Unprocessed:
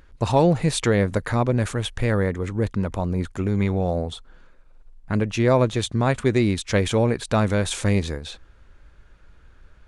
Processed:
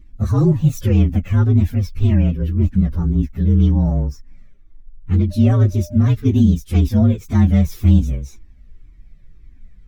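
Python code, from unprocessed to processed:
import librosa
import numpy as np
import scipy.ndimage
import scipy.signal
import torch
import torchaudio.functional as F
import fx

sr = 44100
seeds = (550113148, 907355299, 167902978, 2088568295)

y = fx.partial_stretch(x, sr, pct=118)
y = fx.low_shelf_res(y, sr, hz=380.0, db=12.5, q=1.5)
y = fx.dmg_tone(y, sr, hz=600.0, level_db=-30.0, at=(5.3, 5.96), fade=0.02)
y = fx.comb_cascade(y, sr, direction='falling', hz=1.9)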